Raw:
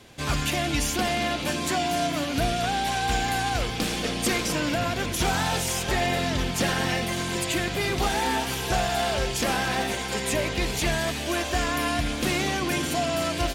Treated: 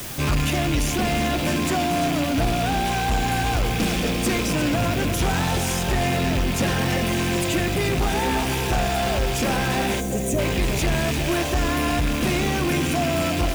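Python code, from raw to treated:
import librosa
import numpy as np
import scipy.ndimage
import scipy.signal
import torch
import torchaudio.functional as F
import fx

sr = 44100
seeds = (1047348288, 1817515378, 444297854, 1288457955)

p1 = fx.rattle_buzz(x, sr, strikes_db=-32.0, level_db=-20.0)
p2 = fx.dmg_noise_colour(p1, sr, seeds[0], colour='white', level_db=-42.0)
p3 = p2 + fx.echo_single(p2, sr, ms=346, db=-10.5, dry=0)
p4 = fx.rider(p3, sr, range_db=10, speed_s=0.5)
p5 = fx.low_shelf(p4, sr, hz=480.0, db=8.5)
p6 = fx.notch(p5, sr, hz=4300.0, q=23.0)
p7 = fx.quant_companded(p6, sr, bits=2)
p8 = p6 + F.gain(torch.from_numpy(p7), -6.0).numpy()
p9 = np.clip(p8, -10.0 ** (-14.5 / 20.0), 10.0 ** (-14.5 / 20.0))
p10 = fx.spec_box(p9, sr, start_s=10.0, length_s=0.38, low_hz=770.0, high_hz=5700.0, gain_db=-12)
y = F.gain(torch.from_numpy(p10), -2.5).numpy()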